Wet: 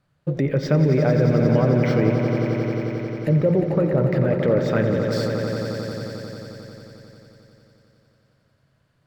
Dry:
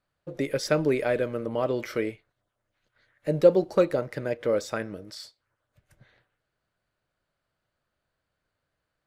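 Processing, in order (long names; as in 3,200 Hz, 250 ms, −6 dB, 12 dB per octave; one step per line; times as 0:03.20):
parametric band 140 Hz +13 dB 1.3 octaves
treble cut that deepens with the level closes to 1,600 Hz, closed at −18.5 dBFS
in parallel at +1.5 dB: compressor whose output falls as the input rises −25 dBFS
on the sum: brickwall limiter −9.5 dBFS, peak gain reduction 5.5 dB
on a send: echo that builds up and dies away 89 ms, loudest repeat 5, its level −9.5 dB
on the sum: linearly interpolated sample-rate reduction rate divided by 2×
level −1.5 dB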